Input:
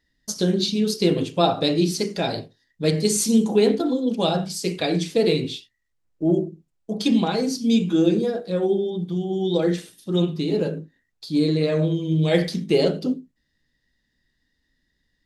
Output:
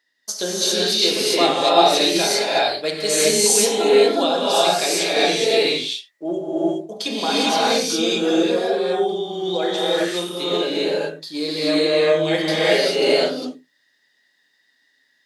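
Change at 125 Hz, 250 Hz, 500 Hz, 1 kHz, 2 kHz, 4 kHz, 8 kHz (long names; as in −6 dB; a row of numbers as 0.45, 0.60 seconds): −11.0, −3.0, +4.5, +9.5, +11.0, +10.0, +9.5 decibels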